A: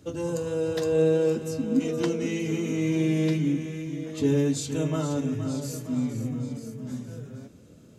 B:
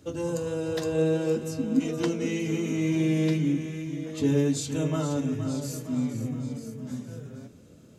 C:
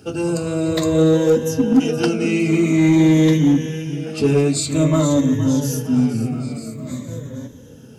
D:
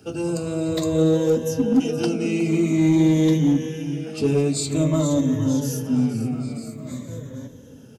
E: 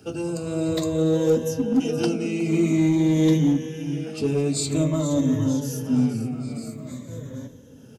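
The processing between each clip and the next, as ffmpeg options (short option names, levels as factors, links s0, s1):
-af "bandreject=f=60:t=h:w=6,bandreject=f=120:t=h:w=6,bandreject=f=180:t=h:w=6,bandreject=f=240:t=h:w=6,bandreject=f=300:t=h:w=6,bandreject=f=360:t=h:w=6,bandreject=f=420:t=h:w=6,bandreject=f=480:t=h:w=6"
-filter_complex "[0:a]afftfilt=real='re*pow(10,12/40*sin(2*PI*(1.1*log(max(b,1)*sr/1024/100)/log(2)-(-0.49)*(pts-256)/sr)))':imag='im*pow(10,12/40*sin(2*PI*(1.1*log(max(b,1)*sr/1024/100)/log(2)-(-0.49)*(pts-256)/sr)))':win_size=1024:overlap=0.75,asplit=2[s0][s1];[s1]aeval=exprs='0.112*(abs(mod(val(0)/0.112+3,4)-2)-1)':c=same,volume=0.398[s2];[s0][s2]amix=inputs=2:normalize=0,volume=2"
-filter_complex "[0:a]acrossover=split=110|1200|2300[s0][s1][s2][s3];[s1]aecho=1:1:363:0.2[s4];[s2]acompressor=threshold=0.00398:ratio=6[s5];[s0][s4][s5][s3]amix=inputs=4:normalize=0,volume=0.631"
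-af "tremolo=f=1.5:d=0.34"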